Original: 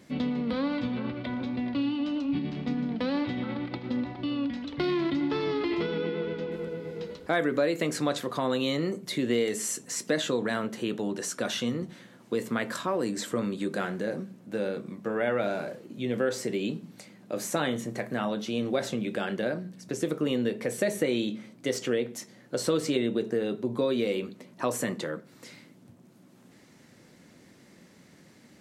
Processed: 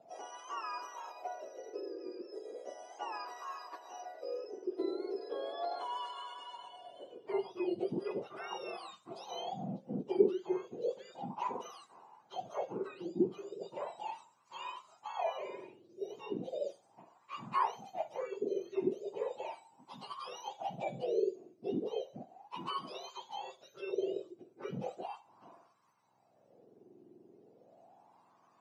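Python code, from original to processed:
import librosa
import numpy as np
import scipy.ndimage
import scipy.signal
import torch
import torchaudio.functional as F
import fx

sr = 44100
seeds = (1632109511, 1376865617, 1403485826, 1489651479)

y = fx.octave_mirror(x, sr, pivot_hz=1200.0)
y = fx.wah_lfo(y, sr, hz=0.36, low_hz=360.0, high_hz=1100.0, q=6.4)
y = y * 10.0 ** (8.5 / 20.0)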